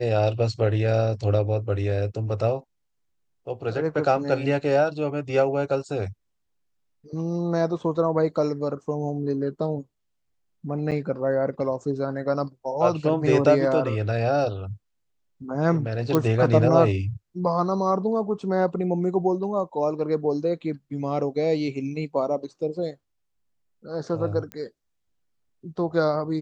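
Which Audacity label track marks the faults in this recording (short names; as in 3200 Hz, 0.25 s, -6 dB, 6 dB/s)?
10.910000	10.920000	gap 7.9 ms
16.150000	16.150000	pop -8 dBFS
24.520000	24.520000	pop -20 dBFS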